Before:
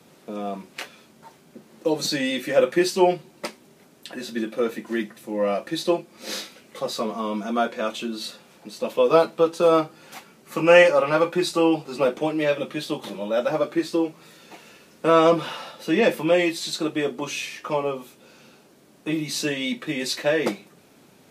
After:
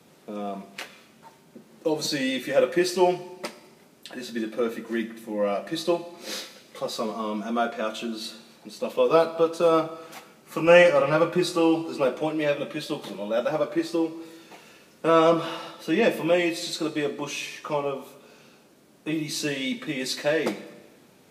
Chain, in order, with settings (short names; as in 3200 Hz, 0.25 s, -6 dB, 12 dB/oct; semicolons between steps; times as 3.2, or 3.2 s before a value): 10.67–11.46 low shelf 140 Hz +12 dB; Schroeder reverb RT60 1.2 s, combs from 27 ms, DRR 13 dB; gain -2.5 dB